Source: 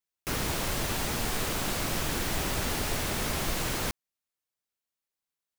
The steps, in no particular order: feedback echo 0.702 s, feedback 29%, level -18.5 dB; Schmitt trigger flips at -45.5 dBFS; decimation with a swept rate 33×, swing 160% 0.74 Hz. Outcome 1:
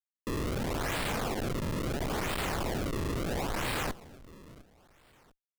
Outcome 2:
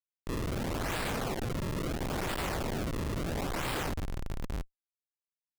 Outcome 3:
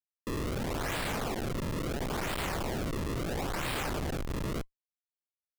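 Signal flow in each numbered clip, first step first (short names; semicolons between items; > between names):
Schmitt trigger > feedback echo > decimation with a swept rate; feedback echo > decimation with a swept rate > Schmitt trigger; feedback echo > Schmitt trigger > decimation with a swept rate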